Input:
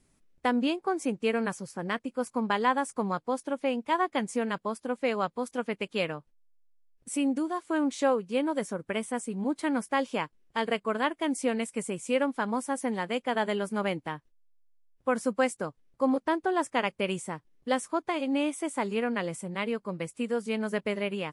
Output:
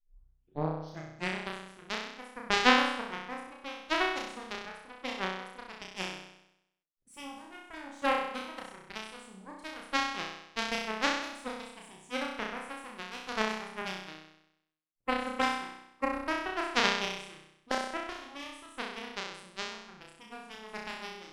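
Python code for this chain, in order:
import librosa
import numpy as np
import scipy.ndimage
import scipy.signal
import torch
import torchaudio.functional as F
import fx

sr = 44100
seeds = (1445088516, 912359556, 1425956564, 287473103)

y = fx.tape_start_head(x, sr, length_s=1.54)
y = fx.cheby_harmonics(y, sr, harmonics=(2, 3), levels_db=(-30, -9), full_scale_db=-11.5)
y = fx.room_flutter(y, sr, wall_m=5.5, rt60_s=0.82)
y = y * 10.0 ** (5.0 / 20.0)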